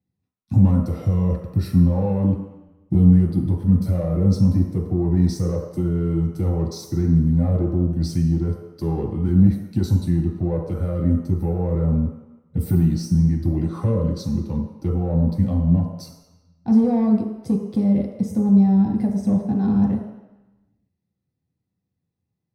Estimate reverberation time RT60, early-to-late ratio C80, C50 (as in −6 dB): 1.0 s, 6.5 dB, 4.5 dB